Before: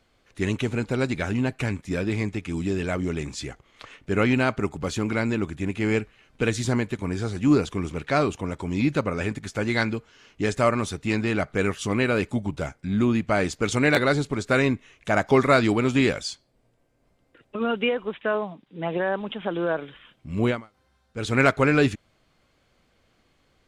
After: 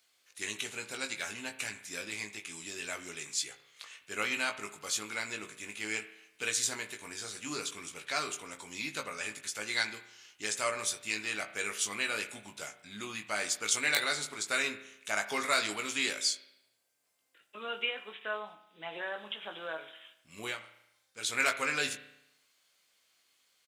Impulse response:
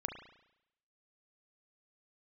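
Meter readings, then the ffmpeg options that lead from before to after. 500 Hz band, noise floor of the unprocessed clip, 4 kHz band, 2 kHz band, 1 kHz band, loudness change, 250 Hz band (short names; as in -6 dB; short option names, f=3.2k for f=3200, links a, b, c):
-17.0 dB, -66 dBFS, 0.0 dB, -5.5 dB, -10.5 dB, -9.5 dB, -22.5 dB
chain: -filter_complex "[0:a]aderivative,asplit=2[a][b];[b]adelay=19,volume=-6dB[c];[a][c]amix=inputs=2:normalize=0,asplit=2[d][e];[1:a]atrim=start_sample=2205[f];[e][f]afir=irnorm=-1:irlink=0,volume=-2dB[g];[d][g]amix=inputs=2:normalize=0"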